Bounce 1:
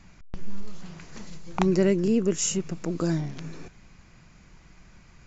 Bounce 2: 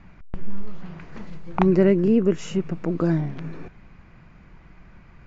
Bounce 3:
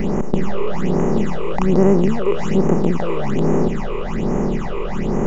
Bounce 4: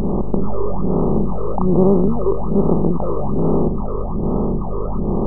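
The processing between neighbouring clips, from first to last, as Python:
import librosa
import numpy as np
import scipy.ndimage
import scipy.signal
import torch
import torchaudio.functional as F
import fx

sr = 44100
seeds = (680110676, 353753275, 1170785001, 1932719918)

y1 = scipy.signal.sosfilt(scipy.signal.butter(2, 2200.0, 'lowpass', fs=sr, output='sos'), x)
y1 = y1 * 10.0 ** (4.5 / 20.0)
y2 = fx.bin_compress(y1, sr, power=0.2)
y2 = fx.phaser_stages(y2, sr, stages=8, low_hz=210.0, high_hz=3900.0, hz=1.2, feedback_pct=45)
y2 = y2 * 10.0 ** (-2.0 / 20.0)
y3 = fx.brickwall_lowpass(y2, sr, high_hz=1300.0)
y3 = fx.add_hum(y3, sr, base_hz=50, snr_db=12)
y3 = fx.wow_flutter(y3, sr, seeds[0], rate_hz=2.1, depth_cents=58.0)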